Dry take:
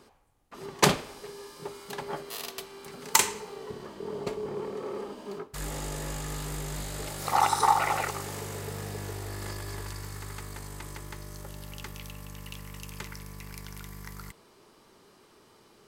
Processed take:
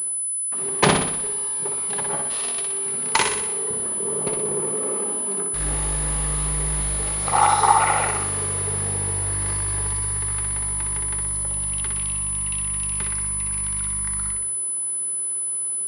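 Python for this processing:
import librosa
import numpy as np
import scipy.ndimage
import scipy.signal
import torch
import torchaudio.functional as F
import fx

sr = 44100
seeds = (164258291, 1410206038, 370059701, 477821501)

p1 = fx.fold_sine(x, sr, drive_db=4, ceiling_db=-2.5)
p2 = x + (p1 * 10.0 ** (-11.0 / 20.0))
p3 = fx.echo_feedback(p2, sr, ms=61, feedback_pct=54, wet_db=-4.0)
y = fx.pwm(p3, sr, carrier_hz=10000.0)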